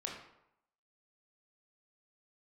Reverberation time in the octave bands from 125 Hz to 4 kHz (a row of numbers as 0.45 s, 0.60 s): 0.75 s, 0.75 s, 0.75 s, 0.80 s, 0.65 s, 0.50 s